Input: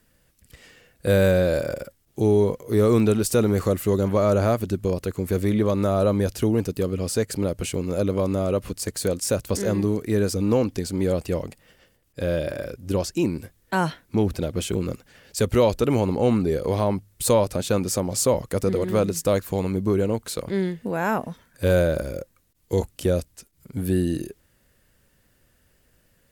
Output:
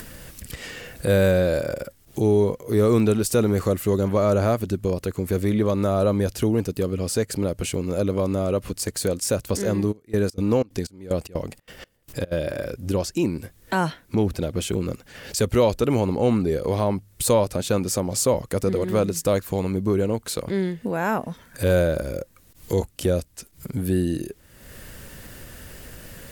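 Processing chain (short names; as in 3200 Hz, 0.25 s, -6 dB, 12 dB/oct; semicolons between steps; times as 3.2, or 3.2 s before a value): 9.91–12.31 step gate "xx...xx.xxx." 185 bpm -24 dB; upward compressor, threshold -22 dBFS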